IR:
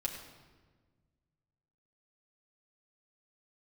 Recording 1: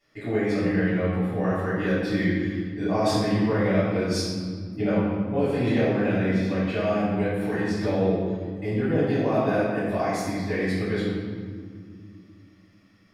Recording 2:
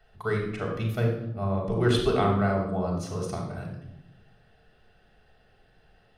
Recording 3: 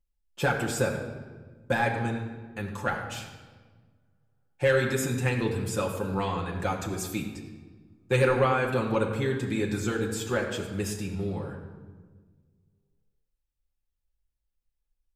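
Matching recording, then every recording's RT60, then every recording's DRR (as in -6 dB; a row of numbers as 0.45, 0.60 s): 3; 2.2, 0.85, 1.4 s; -13.0, -1.5, -2.5 dB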